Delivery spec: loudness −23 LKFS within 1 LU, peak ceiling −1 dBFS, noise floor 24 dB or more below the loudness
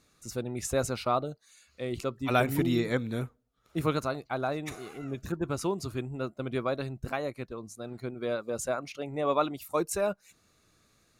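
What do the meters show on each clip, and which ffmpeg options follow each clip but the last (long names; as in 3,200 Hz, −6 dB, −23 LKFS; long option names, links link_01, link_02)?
integrated loudness −32.0 LKFS; sample peak −11.0 dBFS; target loudness −23.0 LKFS
→ -af "volume=9dB"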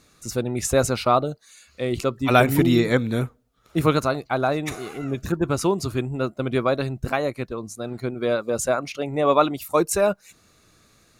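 integrated loudness −23.0 LKFS; sample peak −2.0 dBFS; background noise floor −59 dBFS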